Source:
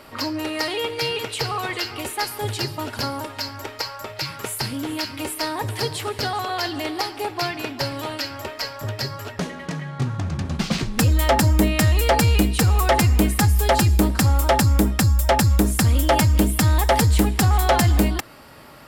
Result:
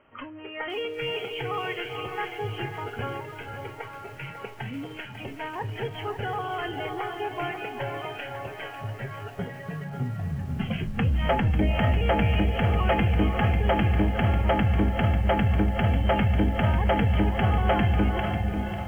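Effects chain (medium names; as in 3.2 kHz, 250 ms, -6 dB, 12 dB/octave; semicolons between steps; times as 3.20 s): tracing distortion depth 0.029 ms; in parallel at -8 dB: overload inside the chain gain 26 dB; on the sum: Chebyshev low-pass 3.2 kHz, order 10; on a send: echo that smears into a reverb 516 ms, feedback 61%, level -6 dB; on the sum: spectral noise reduction 11 dB; bit-crushed delay 545 ms, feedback 35%, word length 7-bit, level -9 dB; trim -6.5 dB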